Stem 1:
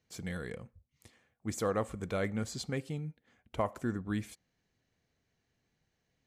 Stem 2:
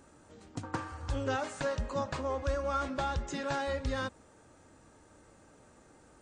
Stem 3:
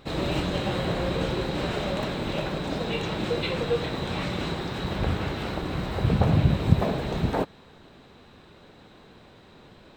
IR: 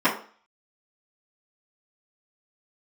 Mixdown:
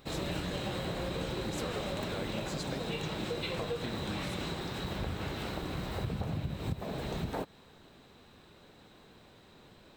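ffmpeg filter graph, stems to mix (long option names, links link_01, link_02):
-filter_complex "[0:a]acompressor=threshold=-36dB:ratio=6,volume=0.5dB[link_01];[2:a]highshelf=frequency=6600:gain=11,volume=-6.5dB[link_02];[link_01][link_02]amix=inputs=2:normalize=0,acompressor=threshold=-31dB:ratio=12"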